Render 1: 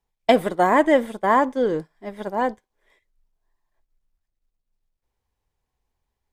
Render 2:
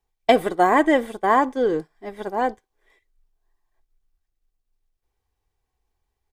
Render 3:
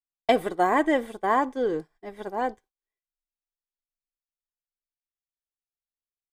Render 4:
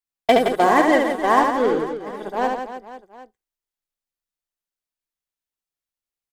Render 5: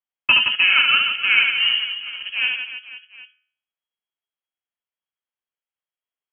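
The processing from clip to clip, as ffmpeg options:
-af "aecho=1:1:2.6:0.37"
-af "agate=range=0.0316:threshold=0.00501:ratio=16:detection=peak,volume=0.562"
-filter_complex "[0:a]asplit=2[s0][s1];[s1]acrusher=bits=3:mix=0:aa=0.5,volume=0.376[s2];[s0][s2]amix=inputs=2:normalize=0,aecho=1:1:70|168|305.2|497.3|766.2:0.631|0.398|0.251|0.158|0.1,volume=1.26"
-af "bandreject=f=78.36:t=h:w=4,bandreject=f=156.72:t=h:w=4,bandreject=f=235.08:t=h:w=4,bandreject=f=313.44:t=h:w=4,bandreject=f=391.8:t=h:w=4,bandreject=f=470.16:t=h:w=4,bandreject=f=548.52:t=h:w=4,bandreject=f=626.88:t=h:w=4,bandreject=f=705.24:t=h:w=4,bandreject=f=783.6:t=h:w=4,bandreject=f=861.96:t=h:w=4,bandreject=f=940.32:t=h:w=4,bandreject=f=1018.68:t=h:w=4,bandreject=f=1097.04:t=h:w=4,bandreject=f=1175.4:t=h:w=4,bandreject=f=1253.76:t=h:w=4,bandreject=f=1332.12:t=h:w=4,bandreject=f=1410.48:t=h:w=4,bandreject=f=1488.84:t=h:w=4,bandreject=f=1567.2:t=h:w=4,bandreject=f=1645.56:t=h:w=4,bandreject=f=1723.92:t=h:w=4,bandreject=f=1802.28:t=h:w=4,bandreject=f=1880.64:t=h:w=4,bandreject=f=1959:t=h:w=4,bandreject=f=2037.36:t=h:w=4,lowpass=f=2800:t=q:w=0.5098,lowpass=f=2800:t=q:w=0.6013,lowpass=f=2800:t=q:w=0.9,lowpass=f=2800:t=q:w=2.563,afreqshift=-3300"

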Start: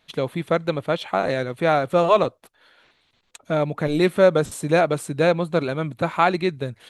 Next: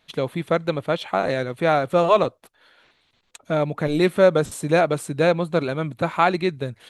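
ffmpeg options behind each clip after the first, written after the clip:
-af anull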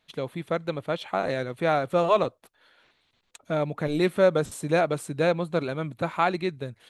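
-af "dynaudnorm=f=400:g=5:m=1.88,volume=0.447"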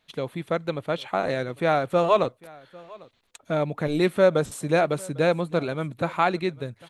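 -af "aecho=1:1:799:0.0668,volume=1.19"

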